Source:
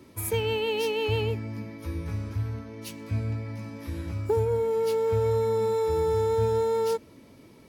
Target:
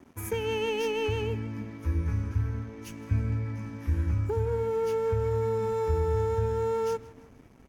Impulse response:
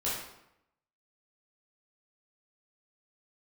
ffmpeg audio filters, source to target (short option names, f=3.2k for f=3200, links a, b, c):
-filter_complex "[0:a]asplit=2[a][b];[b]adynamicsmooth=sensitivity=3.5:basefreq=3k,volume=3dB[c];[a][c]amix=inputs=2:normalize=0,equalizer=f=100:t=o:w=0.33:g=-4,equalizer=f=250:t=o:w=0.33:g=6,equalizer=f=630:t=o:w=0.33:g=-10,equalizer=f=1.6k:t=o:w=0.33:g=5,equalizer=f=4k:t=o:w=0.33:g=-9,equalizer=f=6.3k:t=o:w=0.33:g=9,asplit=2[d][e];[e]aecho=0:1:160|320|480:0.1|0.045|0.0202[f];[d][f]amix=inputs=2:normalize=0,alimiter=limit=-13.5dB:level=0:latency=1:release=291,asubboost=boost=4.5:cutoff=110,aeval=exprs='sgn(val(0))*max(abs(val(0))-0.00473,0)':c=same,bandreject=f=112.9:t=h:w=4,bandreject=f=225.8:t=h:w=4,bandreject=f=338.7:t=h:w=4,volume=-6.5dB"